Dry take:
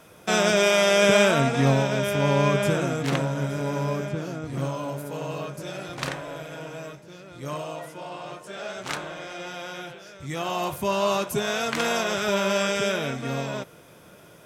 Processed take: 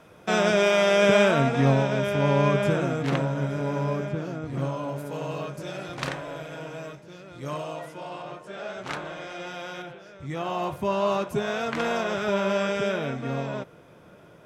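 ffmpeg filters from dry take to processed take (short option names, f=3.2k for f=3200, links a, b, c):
-af "asetnsamples=n=441:p=0,asendcmd='4.96 lowpass f 5200;8.22 lowpass f 2300;9.05 lowpass f 4300;9.82 lowpass f 1700',lowpass=f=2.6k:p=1"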